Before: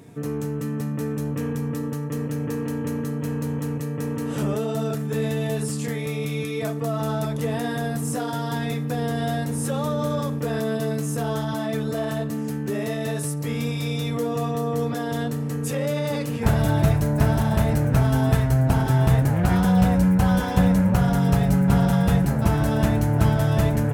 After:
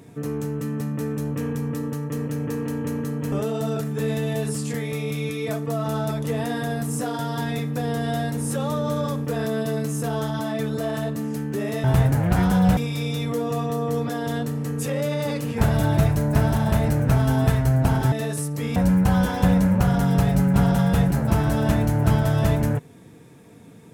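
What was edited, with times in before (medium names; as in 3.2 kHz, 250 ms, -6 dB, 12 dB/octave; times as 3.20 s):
3.32–4.46 s: delete
12.98–13.62 s: swap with 18.97–19.90 s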